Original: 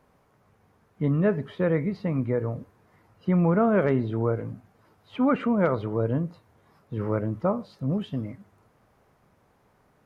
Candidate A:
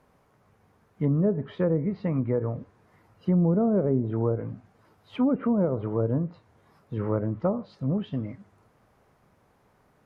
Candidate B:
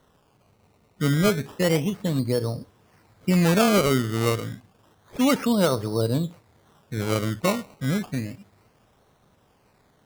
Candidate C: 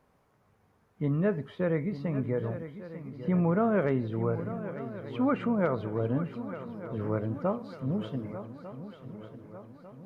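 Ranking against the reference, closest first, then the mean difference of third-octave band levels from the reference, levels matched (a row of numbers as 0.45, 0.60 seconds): A, C, B; 2.5, 3.5, 9.5 decibels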